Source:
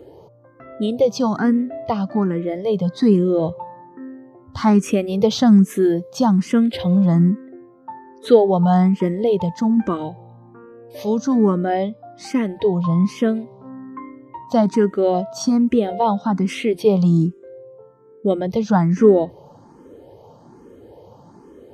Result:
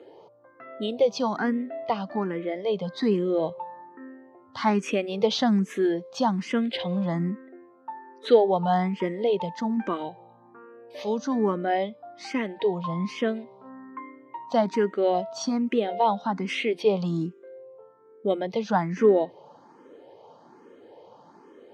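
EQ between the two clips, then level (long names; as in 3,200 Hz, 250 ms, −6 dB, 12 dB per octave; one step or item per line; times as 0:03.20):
spectral tilt +3.5 dB per octave
dynamic equaliser 1,300 Hz, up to −5 dB, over −43 dBFS, Q 2.8
band-pass filter 170–2,700 Hz
−1.5 dB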